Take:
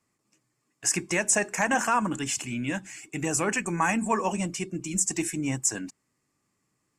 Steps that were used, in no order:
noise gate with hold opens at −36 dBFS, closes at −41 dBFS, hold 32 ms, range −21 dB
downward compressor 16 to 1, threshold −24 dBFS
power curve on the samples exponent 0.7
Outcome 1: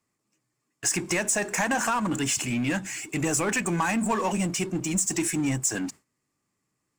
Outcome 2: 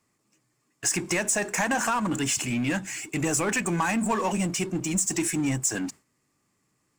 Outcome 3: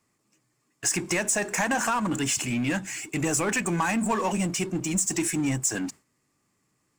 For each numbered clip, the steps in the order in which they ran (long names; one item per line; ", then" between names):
downward compressor, then power curve on the samples, then noise gate with hold
downward compressor, then noise gate with hold, then power curve on the samples
noise gate with hold, then downward compressor, then power curve on the samples